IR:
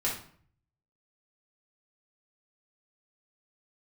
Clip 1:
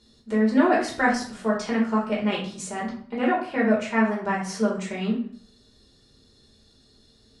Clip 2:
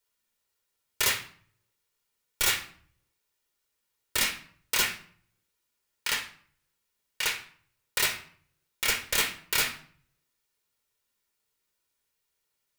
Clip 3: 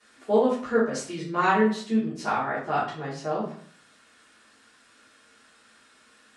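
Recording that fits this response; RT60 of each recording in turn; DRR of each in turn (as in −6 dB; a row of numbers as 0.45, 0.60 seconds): 1; 0.55, 0.55, 0.55 seconds; −5.5, 4.0, −14.0 decibels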